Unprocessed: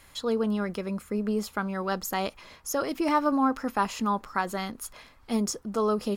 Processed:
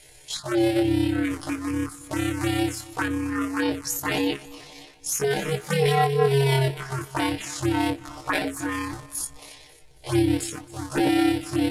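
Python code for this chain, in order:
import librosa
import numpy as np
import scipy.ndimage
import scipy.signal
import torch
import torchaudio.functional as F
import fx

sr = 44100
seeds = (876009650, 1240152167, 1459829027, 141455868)

y = fx.cycle_switch(x, sr, every=2, mode='inverted')
y = scipy.signal.sosfilt(scipy.signal.butter(4, 11000.0, 'lowpass', fs=sr, output='sos'), y)
y = fx.high_shelf(y, sr, hz=5600.0, db=5.5)
y = y + 0.84 * np.pad(y, (int(6.6 * sr / 1000.0), 0))[:len(y)]
y = fx.stretch_grains(y, sr, factor=1.9, grain_ms=61.0)
y = fx.env_phaser(y, sr, low_hz=190.0, high_hz=1200.0, full_db=-22.0)
y = fx.echo_feedback(y, sr, ms=272, feedback_pct=45, wet_db=-20)
y = F.gain(torch.from_numpy(y), 4.5).numpy()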